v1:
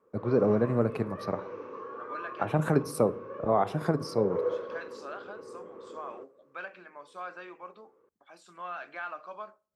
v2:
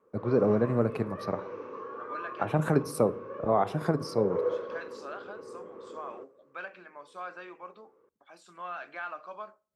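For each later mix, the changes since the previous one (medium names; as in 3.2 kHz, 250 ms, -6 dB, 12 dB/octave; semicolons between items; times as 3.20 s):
background: send +8.0 dB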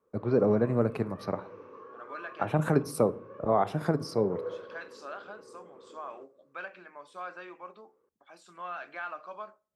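background -7.5 dB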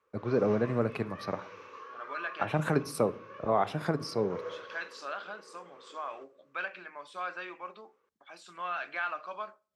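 first voice -3.5 dB; background: add tilt EQ +4.5 dB/octave; master: add peaking EQ 3 kHz +8 dB 2.4 oct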